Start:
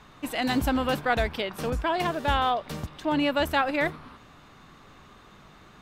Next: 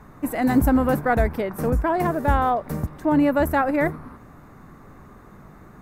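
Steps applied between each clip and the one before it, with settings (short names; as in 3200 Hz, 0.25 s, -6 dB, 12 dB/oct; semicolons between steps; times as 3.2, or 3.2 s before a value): EQ curve 240 Hz 0 dB, 2000 Hz -8 dB, 3100 Hz -24 dB, 13000 Hz 0 dB; gain +8.5 dB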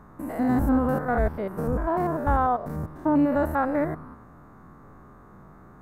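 stepped spectrum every 0.1 s; resonant high shelf 1800 Hz -6.5 dB, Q 1.5; gain -2 dB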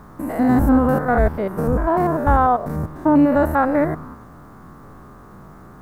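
requantised 12-bit, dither triangular; gain +7 dB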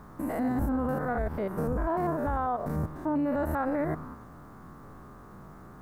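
limiter -15.5 dBFS, peak gain reduction 11 dB; gain -6 dB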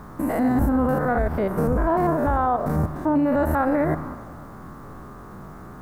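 reverb RT60 2.0 s, pre-delay 44 ms, DRR 15 dB; gain +8 dB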